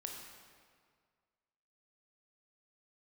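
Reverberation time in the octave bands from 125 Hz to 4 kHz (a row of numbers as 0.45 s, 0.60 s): 2.0 s, 1.8 s, 1.9 s, 1.9 s, 1.7 s, 1.4 s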